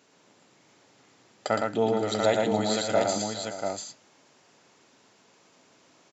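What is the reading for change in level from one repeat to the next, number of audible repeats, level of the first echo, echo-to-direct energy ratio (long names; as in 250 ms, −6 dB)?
repeats not evenly spaced, 5, −13.5 dB, 0.0 dB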